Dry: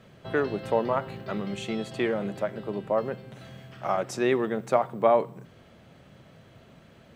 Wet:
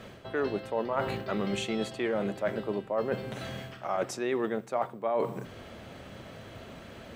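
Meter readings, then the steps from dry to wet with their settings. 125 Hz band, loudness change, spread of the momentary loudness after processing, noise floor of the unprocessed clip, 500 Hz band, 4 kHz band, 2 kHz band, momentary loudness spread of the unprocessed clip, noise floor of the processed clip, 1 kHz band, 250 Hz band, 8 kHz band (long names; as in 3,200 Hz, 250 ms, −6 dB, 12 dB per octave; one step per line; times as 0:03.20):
−2.0 dB, −4.5 dB, 15 LU, −54 dBFS, −4.0 dB, +1.0 dB, −2.5 dB, 13 LU, −48 dBFS, −5.0 dB, −2.5 dB, +0.5 dB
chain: parametric band 150 Hz −8 dB 0.65 octaves
reversed playback
downward compressor 8 to 1, threshold −36 dBFS, peak gain reduction 19.5 dB
reversed playback
level +9 dB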